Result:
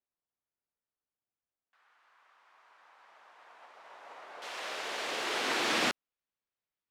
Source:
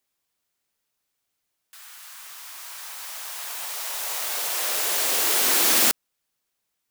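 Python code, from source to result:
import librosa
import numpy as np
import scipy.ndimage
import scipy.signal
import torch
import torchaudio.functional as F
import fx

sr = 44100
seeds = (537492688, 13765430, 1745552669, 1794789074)

y = fx.lowpass(x, sr, hz=fx.steps((0.0, 1400.0), (4.42, 3200.0)), slope=12)
y = fx.upward_expand(y, sr, threshold_db=-44.0, expansion=1.5)
y = y * librosa.db_to_amplitude(-2.5)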